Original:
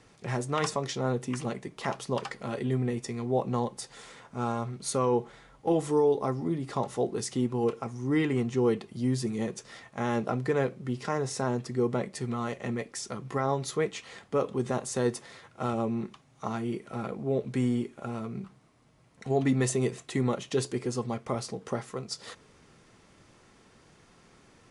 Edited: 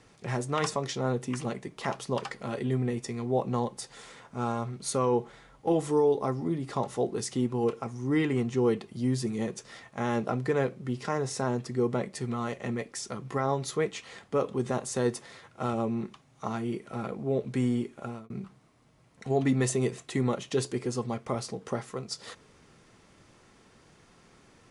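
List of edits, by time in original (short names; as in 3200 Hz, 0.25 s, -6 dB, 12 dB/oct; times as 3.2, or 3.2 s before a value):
18.04–18.3 fade out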